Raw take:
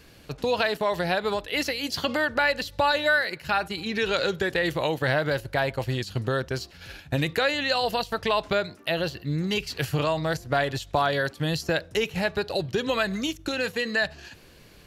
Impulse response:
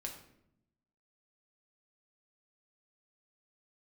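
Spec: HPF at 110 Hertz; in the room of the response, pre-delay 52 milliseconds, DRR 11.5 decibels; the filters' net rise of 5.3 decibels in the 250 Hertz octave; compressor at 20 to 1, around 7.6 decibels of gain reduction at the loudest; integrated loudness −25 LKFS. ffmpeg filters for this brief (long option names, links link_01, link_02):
-filter_complex "[0:a]highpass=110,equalizer=frequency=250:width_type=o:gain=7.5,acompressor=threshold=-25dB:ratio=20,asplit=2[link_01][link_02];[1:a]atrim=start_sample=2205,adelay=52[link_03];[link_02][link_03]afir=irnorm=-1:irlink=0,volume=-9.5dB[link_04];[link_01][link_04]amix=inputs=2:normalize=0,volume=5.5dB"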